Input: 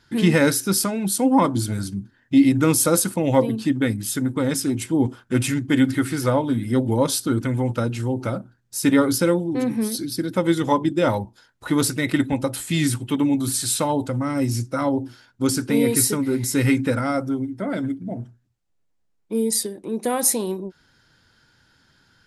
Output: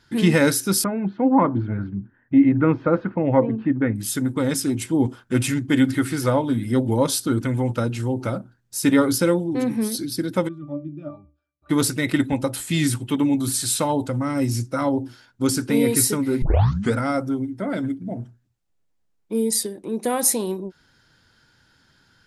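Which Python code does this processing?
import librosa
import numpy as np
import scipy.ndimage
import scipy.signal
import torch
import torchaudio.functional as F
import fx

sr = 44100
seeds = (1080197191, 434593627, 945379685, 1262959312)

y = fx.cheby2_lowpass(x, sr, hz=8100.0, order=4, stop_db=70, at=(0.84, 3.96))
y = fx.octave_resonator(y, sr, note='D', decay_s=0.3, at=(10.47, 11.69), fade=0.02)
y = fx.edit(y, sr, fx.tape_start(start_s=16.42, length_s=0.53), tone=tone)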